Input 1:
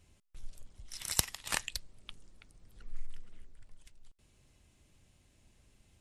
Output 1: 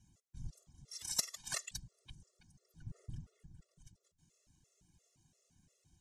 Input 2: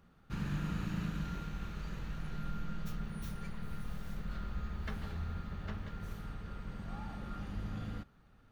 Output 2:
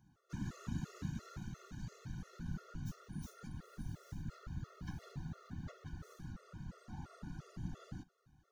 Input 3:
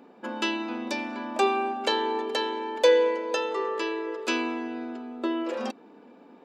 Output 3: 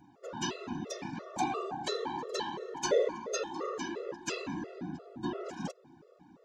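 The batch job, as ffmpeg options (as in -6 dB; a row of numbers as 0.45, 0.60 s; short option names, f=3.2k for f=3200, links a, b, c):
-af "afftfilt=real='hypot(re,im)*cos(2*PI*random(0))':imag='hypot(re,im)*sin(2*PI*random(1))':win_size=512:overlap=0.75,equalizer=f=160:t=o:w=0.67:g=5,equalizer=f=2.5k:t=o:w=0.67:g=-5,equalizer=f=6.3k:t=o:w=0.67:g=11,afftfilt=real='re*gt(sin(2*PI*2.9*pts/sr)*(1-2*mod(floor(b*sr/1024/360),2)),0)':imag='im*gt(sin(2*PI*2.9*pts/sr)*(1-2*mod(floor(b*sr/1024/360),2)),0)':win_size=1024:overlap=0.75,volume=1dB"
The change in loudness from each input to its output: -7.0, -5.5, -8.5 LU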